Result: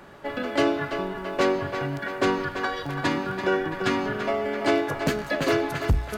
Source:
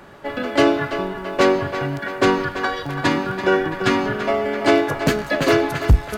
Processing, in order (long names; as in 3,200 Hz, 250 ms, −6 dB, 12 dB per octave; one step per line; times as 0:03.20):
mains-hum notches 60/120 Hz
in parallel at −2 dB: downward compressor, threshold −23 dBFS, peak gain reduction 13.5 dB
on the sum: level −8.5 dB